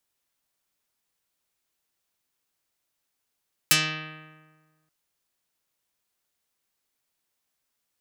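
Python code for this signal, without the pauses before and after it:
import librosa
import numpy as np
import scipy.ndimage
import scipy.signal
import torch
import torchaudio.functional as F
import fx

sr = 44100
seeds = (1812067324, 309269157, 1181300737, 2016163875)

y = fx.pluck(sr, length_s=1.18, note=51, decay_s=1.53, pick=0.44, brightness='dark')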